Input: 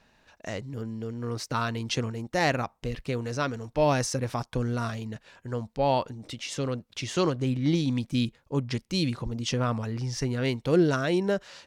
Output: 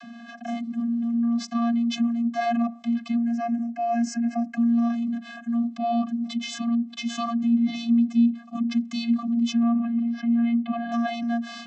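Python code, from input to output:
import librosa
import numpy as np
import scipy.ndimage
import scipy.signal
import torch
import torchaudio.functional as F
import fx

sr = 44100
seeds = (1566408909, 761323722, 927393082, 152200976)

y = fx.vocoder(x, sr, bands=32, carrier='square', carrier_hz=234.0)
y = fx.fixed_phaser(y, sr, hz=730.0, stages=8, at=(3.16, 4.56), fade=0.02)
y = fx.lowpass(y, sr, hz=2900.0, slope=24, at=(9.63, 10.92))
y = fx.env_flatten(y, sr, amount_pct=50)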